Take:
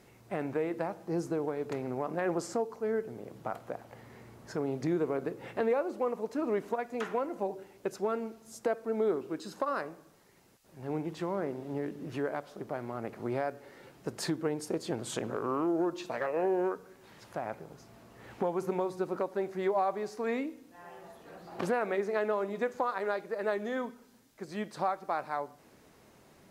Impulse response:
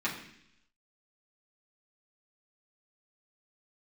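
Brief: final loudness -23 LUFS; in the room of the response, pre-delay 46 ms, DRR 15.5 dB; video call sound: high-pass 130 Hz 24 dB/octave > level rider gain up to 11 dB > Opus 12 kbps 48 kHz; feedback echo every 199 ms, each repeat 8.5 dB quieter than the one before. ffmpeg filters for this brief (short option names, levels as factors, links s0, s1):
-filter_complex "[0:a]aecho=1:1:199|398|597|796:0.376|0.143|0.0543|0.0206,asplit=2[s0][s1];[1:a]atrim=start_sample=2205,adelay=46[s2];[s1][s2]afir=irnorm=-1:irlink=0,volume=0.0708[s3];[s0][s3]amix=inputs=2:normalize=0,highpass=f=130:w=0.5412,highpass=f=130:w=1.3066,dynaudnorm=m=3.55,volume=1.5" -ar 48000 -c:a libopus -b:a 12k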